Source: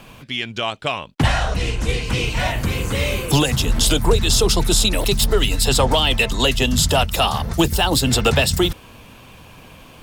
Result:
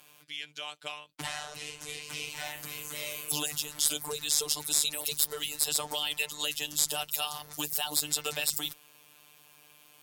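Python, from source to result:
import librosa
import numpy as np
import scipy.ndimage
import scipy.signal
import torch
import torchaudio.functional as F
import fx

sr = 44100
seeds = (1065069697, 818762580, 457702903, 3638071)

y = fx.riaa(x, sr, side='recording')
y = fx.robotise(y, sr, hz=149.0)
y = fx.cheby_harmonics(y, sr, harmonics=(4,), levels_db=(-24,), full_scale_db=15.5)
y = F.gain(torch.from_numpy(y), -15.5).numpy()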